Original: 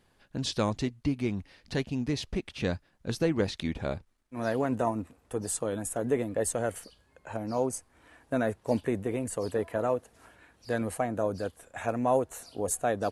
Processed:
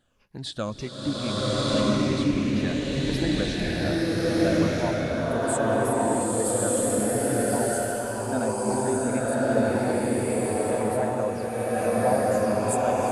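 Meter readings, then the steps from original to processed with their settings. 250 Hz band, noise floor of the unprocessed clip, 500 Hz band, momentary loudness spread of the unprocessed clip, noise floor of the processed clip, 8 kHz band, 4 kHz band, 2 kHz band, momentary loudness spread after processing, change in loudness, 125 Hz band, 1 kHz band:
+7.5 dB, −67 dBFS, +6.5 dB, 9 LU, −36 dBFS, +7.5 dB, +8.5 dB, +7.5 dB, 5 LU, +6.5 dB, +6.5 dB, +7.0 dB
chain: rippled gain that drifts along the octave scale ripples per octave 0.83, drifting −1.8 Hz, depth 12 dB
slow-attack reverb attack 1,270 ms, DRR −10 dB
level −4.5 dB

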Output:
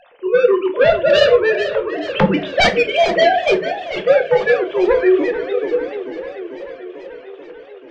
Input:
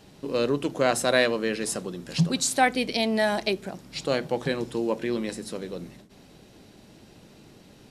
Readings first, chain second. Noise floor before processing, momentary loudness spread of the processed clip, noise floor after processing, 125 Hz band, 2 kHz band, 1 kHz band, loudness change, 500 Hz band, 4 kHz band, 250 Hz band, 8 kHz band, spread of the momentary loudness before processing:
−53 dBFS, 18 LU, −39 dBFS, +2.5 dB, +10.0 dB, +9.0 dB, +10.5 dB, +13.5 dB, +7.5 dB, +6.5 dB, can't be measured, 13 LU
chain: three sine waves on the formant tracks
parametric band 360 Hz −7 dB 0.5 octaves
sine wavefolder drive 12 dB, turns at −8.5 dBFS
rectangular room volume 140 cubic metres, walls furnished, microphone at 0.85 metres
feedback echo with a swinging delay time 440 ms, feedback 70%, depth 151 cents, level −12.5 dB
level −1.5 dB

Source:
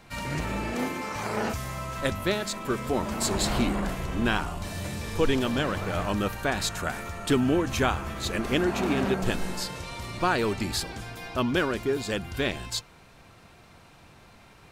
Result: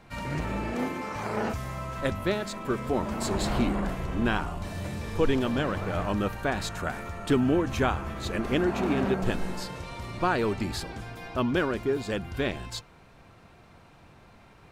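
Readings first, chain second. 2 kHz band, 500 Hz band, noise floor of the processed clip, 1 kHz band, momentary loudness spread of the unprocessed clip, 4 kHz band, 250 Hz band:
−2.5 dB, 0.0 dB, −54 dBFS, −1.0 dB, 8 LU, −5.5 dB, 0.0 dB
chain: high-shelf EQ 2,800 Hz −8.5 dB

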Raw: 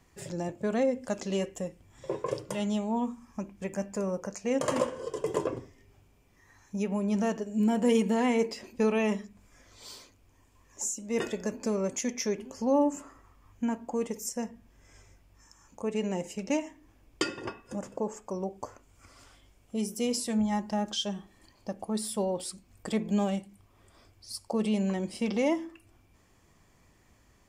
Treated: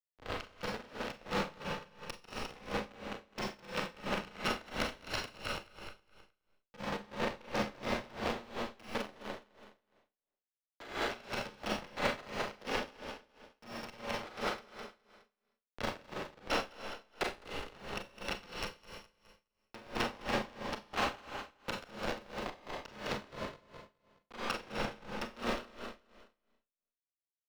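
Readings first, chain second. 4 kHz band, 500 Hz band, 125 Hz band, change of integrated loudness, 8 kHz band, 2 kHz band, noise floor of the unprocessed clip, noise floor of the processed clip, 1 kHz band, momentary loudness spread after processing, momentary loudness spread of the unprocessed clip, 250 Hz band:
−1.0 dB, −10.0 dB, −9.0 dB, −8.0 dB, −13.5 dB, +2.5 dB, −63 dBFS, below −85 dBFS, −2.0 dB, 12 LU, 14 LU, −14.5 dB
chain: samples in bit-reversed order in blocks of 128 samples
parametric band 260 Hz +9 dB 0.6 octaves
in parallel at 0 dB: brickwall limiter −20.5 dBFS, peak gain reduction 9 dB
on the sum: downward compressor 16 to 1, threshold −30 dBFS, peak gain reduction 15 dB
comparator with hysteresis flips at −27.5 dBFS
three-way crossover with the lows and the highs turned down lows −15 dB, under 320 Hz, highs −19 dB, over 5,000 Hz
on a send: repeating echo 208 ms, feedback 37%, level −5.5 dB
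on the sum: four-comb reverb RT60 0.85 s, combs from 30 ms, DRR −1.5 dB
tremolo with a sine in dB 2.9 Hz, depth 22 dB
level +10 dB

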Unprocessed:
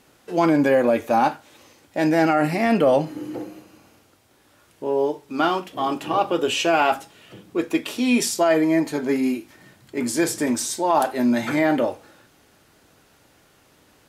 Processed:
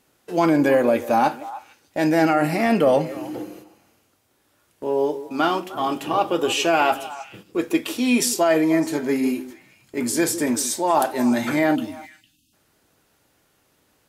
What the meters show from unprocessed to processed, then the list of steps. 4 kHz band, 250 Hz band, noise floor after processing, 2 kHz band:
+1.0 dB, +0.5 dB, −65 dBFS, +0.5 dB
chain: noise gate −43 dBFS, range −8 dB
time-frequency box erased 0:11.76–0:12.53, 340–2,500 Hz
high-shelf EQ 9,700 Hz +7.5 dB
on a send: echo through a band-pass that steps 152 ms, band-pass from 370 Hz, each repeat 1.4 octaves, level −11 dB

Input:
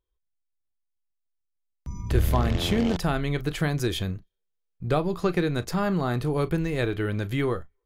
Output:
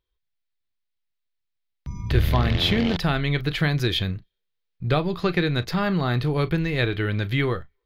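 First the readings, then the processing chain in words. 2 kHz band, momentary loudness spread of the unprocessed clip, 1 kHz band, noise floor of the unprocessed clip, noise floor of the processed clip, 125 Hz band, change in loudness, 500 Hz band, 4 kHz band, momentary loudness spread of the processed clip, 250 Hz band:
+6.0 dB, 8 LU, +1.5 dB, −78 dBFS, −78 dBFS, +4.0 dB, +3.0 dB, +0.5 dB, +7.5 dB, 8 LU, +1.5 dB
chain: octave-band graphic EQ 125/2,000/4,000/8,000 Hz +5/+6/+10/−11 dB

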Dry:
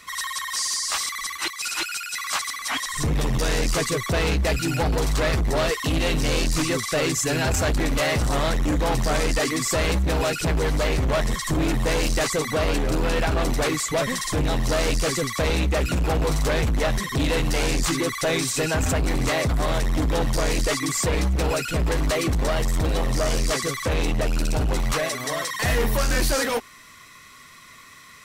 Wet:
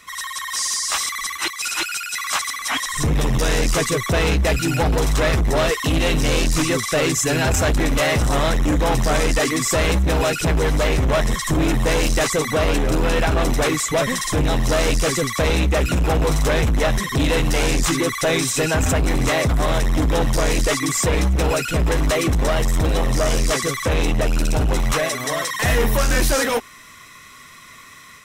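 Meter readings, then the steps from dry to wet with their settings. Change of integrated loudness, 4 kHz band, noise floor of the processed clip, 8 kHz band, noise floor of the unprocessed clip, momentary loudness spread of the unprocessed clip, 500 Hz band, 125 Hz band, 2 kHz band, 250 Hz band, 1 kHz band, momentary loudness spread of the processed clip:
+4.0 dB, +3.0 dB, −43 dBFS, +4.0 dB, −47 dBFS, 3 LU, +4.0 dB, +4.0 dB, +4.0 dB, +4.0 dB, +4.0 dB, 3 LU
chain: notch filter 4,500 Hz, Q 8.8
automatic gain control gain up to 4 dB

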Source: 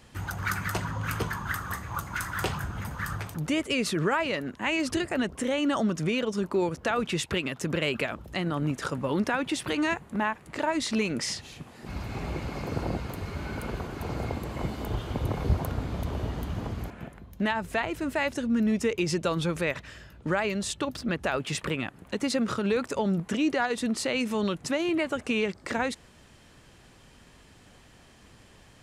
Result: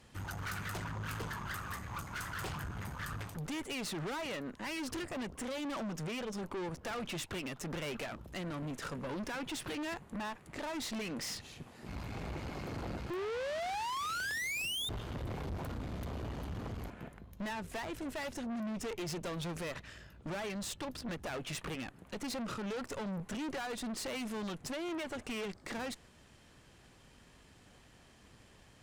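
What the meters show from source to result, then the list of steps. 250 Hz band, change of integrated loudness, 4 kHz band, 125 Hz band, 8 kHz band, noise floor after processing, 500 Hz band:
−11.5 dB, −10.0 dB, −7.5 dB, −10.5 dB, −7.0 dB, −61 dBFS, −11.0 dB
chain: sound drawn into the spectrogram rise, 0:13.10–0:14.89, 340–3,700 Hz −20 dBFS
tube saturation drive 34 dB, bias 0.65
level −2.5 dB

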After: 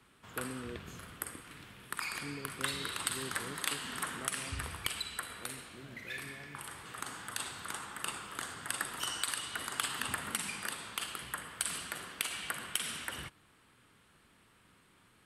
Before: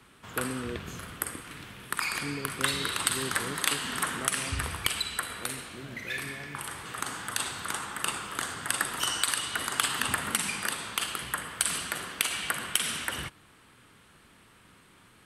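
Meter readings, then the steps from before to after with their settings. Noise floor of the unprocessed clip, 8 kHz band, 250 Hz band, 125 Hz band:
−58 dBFS, −7.5 dB, −7.5 dB, −7.5 dB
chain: notch filter 6,100 Hz, Q 29
level −7.5 dB

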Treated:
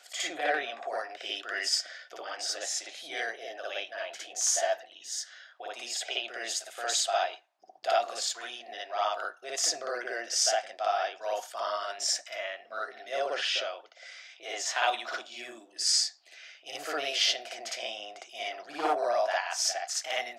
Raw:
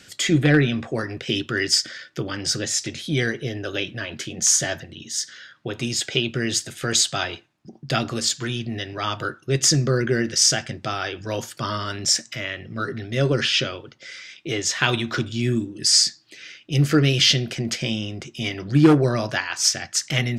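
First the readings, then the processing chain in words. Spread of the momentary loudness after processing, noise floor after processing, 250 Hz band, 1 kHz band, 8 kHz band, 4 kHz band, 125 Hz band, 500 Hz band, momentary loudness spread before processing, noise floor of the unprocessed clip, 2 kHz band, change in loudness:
15 LU, −57 dBFS, −26.5 dB, 0.0 dB, −9.0 dB, −8.5 dB, below −40 dB, −6.5 dB, 13 LU, −52 dBFS, −8.0 dB, −9.0 dB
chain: four-pole ladder high-pass 650 Hz, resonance 75%
backwards echo 58 ms −3.5 dB
level +1.5 dB

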